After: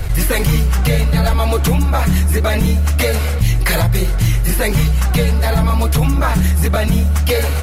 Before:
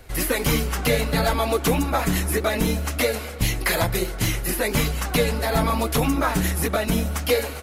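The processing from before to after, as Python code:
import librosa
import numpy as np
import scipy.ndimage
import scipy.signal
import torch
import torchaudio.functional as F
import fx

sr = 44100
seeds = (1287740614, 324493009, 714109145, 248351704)

y = fx.low_shelf_res(x, sr, hz=190.0, db=9.5, q=1.5)
y = fx.env_flatten(y, sr, amount_pct=70)
y = F.gain(torch.from_numpy(y), -3.0).numpy()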